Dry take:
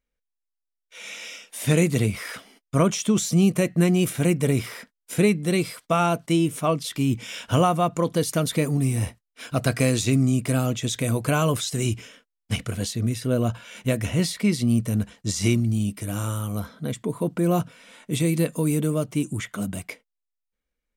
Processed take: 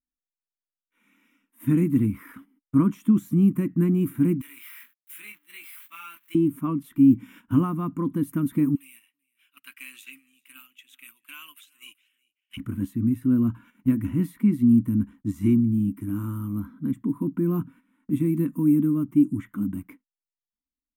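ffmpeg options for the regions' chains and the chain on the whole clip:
-filter_complex "[0:a]asettb=1/sr,asplit=3[a][b][c];[a]atrim=end=4.414[d];[b]atrim=start=4.41:end=6.35,asetpts=PTS-STARTPTS,afade=t=in:d=0.004:c=qsin,afade=t=out:st=1.936:d=0.004:c=qsin,aeval=exprs='val(0)+0.5*0.0282*sgn(val(0))':c=same,highpass=f=2.7k:t=q:w=1.8,asplit=2[e][f];[f]adelay=24,volume=-4.5dB[g];[e][g]amix=inputs=2:normalize=0,atrim=end_sample=85554[h];[c]atrim=start=6.346[i];[d][h]acrossfade=d=0.004:c1=hsin:c2=qsin[j];[j][i]acrossfade=d=0.004:c1=qsin:c2=hsin,asettb=1/sr,asplit=3[k][l][m];[k]atrim=end=8.754[n];[l]atrim=start=8.75:end=12.57,asetpts=PTS-STARTPTS,afade=t=in:d=0.004:c=qsin,afade=t=out:st=3.816:d=0.004:c=qsin,highpass=f=2.8k:t=q:w=4.4,aecho=1:1:386:0.158,atrim=end_sample=168462[o];[m]atrim=start=12.566[p];[n][o]acrossfade=d=0.004:c1=hsin:c2=qsin[q];[q][p]acrossfade=d=0.004:c1=qsin:c2=hsin,firequalizer=gain_entry='entry(160,0);entry(280,14);entry(440,-16);entry(660,-22);entry(980,-3);entry(4700,-30);entry(14000,1)':delay=0.05:min_phase=1,agate=range=-12dB:threshold=-43dB:ratio=16:detection=peak,volume=-3.5dB"

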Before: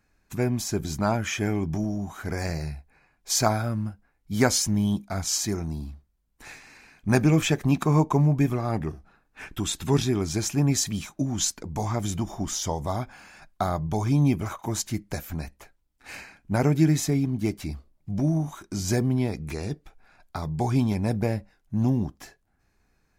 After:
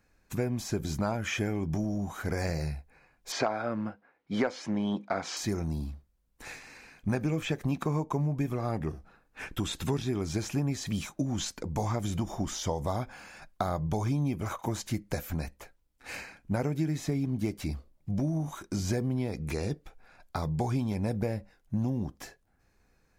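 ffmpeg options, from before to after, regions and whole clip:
-filter_complex "[0:a]asettb=1/sr,asplit=3[a][b][c];[a]atrim=end=3.324[d];[b]atrim=start=3.32:end=5.37,asetpts=PTS-STARTPTS,afade=t=in:d=0.004:c=qsin,afade=t=out:st=2.046:d=0.004:c=qsin,highpass=310,lowpass=2.7k,acontrast=62[e];[c]atrim=start=5.366[f];[d][e]acrossfade=d=0.004:c1=hsin:c2=qsin[g];[g][f]acrossfade=d=0.004:c1=qsin:c2=hsin,acrossover=split=3800[h][i];[i]acompressor=threshold=-38dB:ratio=4:attack=1:release=60[j];[h][j]amix=inputs=2:normalize=0,equalizer=f=510:w=6.5:g=7,acompressor=threshold=-26dB:ratio=6"

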